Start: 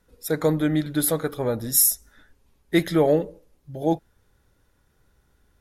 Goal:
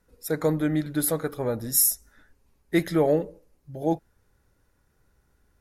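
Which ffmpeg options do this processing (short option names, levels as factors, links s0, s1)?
-af "equalizer=f=3400:w=3.6:g=-6,volume=0.75"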